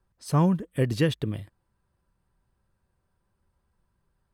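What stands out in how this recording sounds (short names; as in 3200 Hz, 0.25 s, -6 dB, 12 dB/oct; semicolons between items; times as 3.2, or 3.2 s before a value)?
noise floor -76 dBFS; spectral tilt -7.0 dB/oct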